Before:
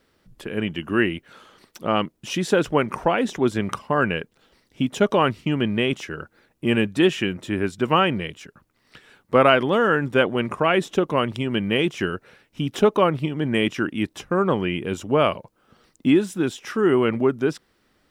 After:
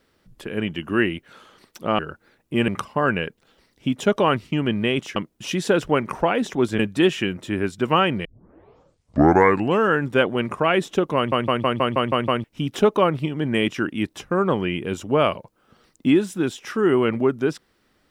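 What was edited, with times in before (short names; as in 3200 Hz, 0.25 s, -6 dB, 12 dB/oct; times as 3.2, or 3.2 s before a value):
1.99–3.62 swap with 6.1–6.79
8.25 tape start 1.66 s
11.16 stutter in place 0.16 s, 8 plays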